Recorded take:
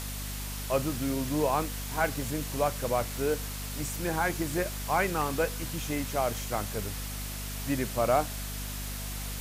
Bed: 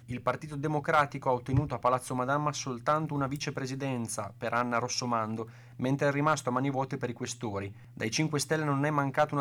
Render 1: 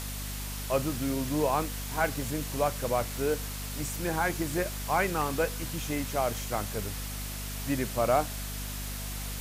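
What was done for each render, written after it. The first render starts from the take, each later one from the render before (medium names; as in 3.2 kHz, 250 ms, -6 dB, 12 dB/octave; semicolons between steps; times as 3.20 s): no audible change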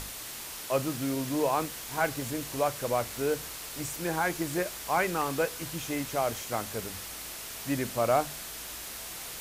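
hum notches 50/100/150/200/250 Hz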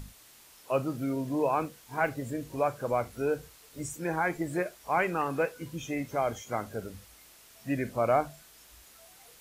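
noise print and reduce 15 dB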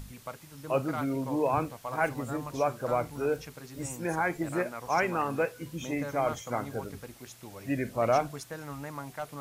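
add bed -11.5 dB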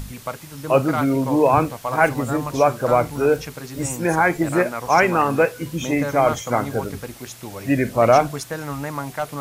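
trim +11.5 dB; peak limiter -3 dBFS, peak gain reduction 1 dB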